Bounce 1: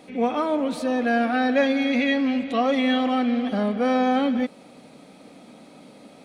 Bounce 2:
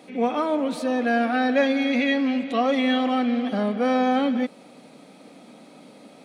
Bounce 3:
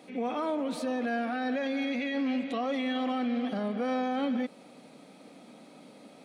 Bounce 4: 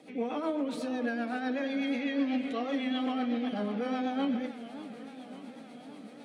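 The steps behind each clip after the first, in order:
high-pass 140 Hz 12 dB/octave
peak limiter -19 dBFS, peak gain reduction 10.5 dB; trim -4.5 dB
reverberation RT60 0.35 s, pre-delay 3 ms, DRR 7 dB; rotary cabinet horn 8 Hz; modulated delay 568 ms, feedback 72%, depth 174 cents, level -15 dB

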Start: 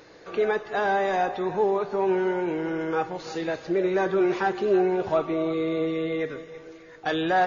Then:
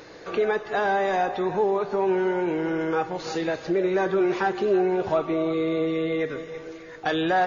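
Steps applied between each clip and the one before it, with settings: compression 1.5:1, threshold -34 dBFS, peak gain reduction 6 dB; trim +5.5 dB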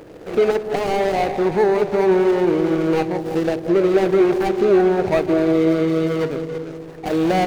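median filter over 41 samples; bucket-brigade echo 186 ms, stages 1024, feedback 64%, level -11 dB; trim +8 dB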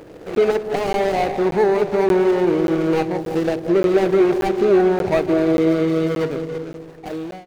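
fade out at the end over 0.81 s; crackling interface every 0.58 s, samples 512, zero, from 0.35 s

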